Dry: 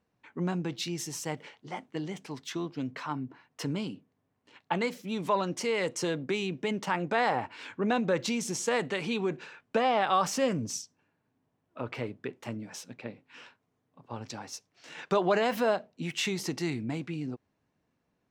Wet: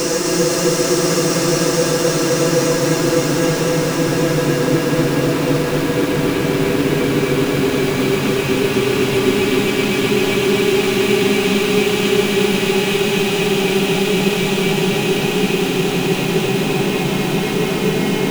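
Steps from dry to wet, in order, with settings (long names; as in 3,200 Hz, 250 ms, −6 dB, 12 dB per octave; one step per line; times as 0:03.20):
converter with a step at zero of −32.5 dBFS
leveller curve on the samples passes 3
extreme stretch with random phases 34×, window 0.50 s, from 0:06.04
feedback echo at a low word length 255 ms, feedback 80%, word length 6 bits, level −4 dB
level +1.5 dB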